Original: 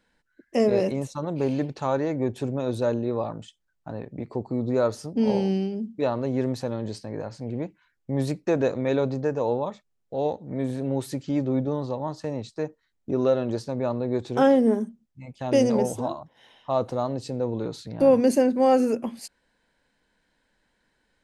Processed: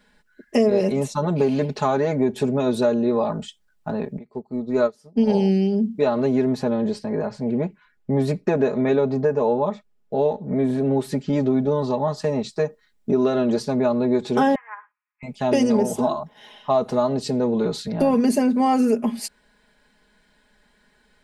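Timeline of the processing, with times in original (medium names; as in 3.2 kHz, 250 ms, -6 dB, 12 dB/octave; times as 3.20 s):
4.18–5.30 s: upward expansion 2.5:1, over -35 dBFS
6.41–11.33 s: treble shelf 3 kHz -9.5 dB
14.55–15.23 s: Chebyshev band-pass 940–2500 Hz, order 4
whole clip: band-stop 6.4 kHz, Q 24; comb 4.8 ms, depth 82%; compression 3:1, threshold -24 dBFS; trim +7 dB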